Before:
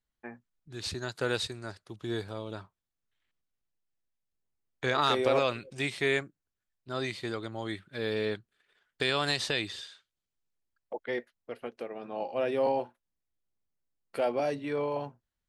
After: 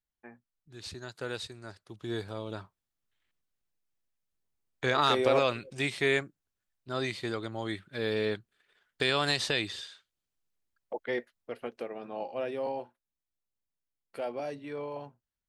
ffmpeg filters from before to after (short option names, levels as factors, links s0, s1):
-af "volume=1.12,afade=t=in:st=1.49:d=1.03:silence=0.421697,afade=t=out:st=11.81:d=0.8:silence=0.421697"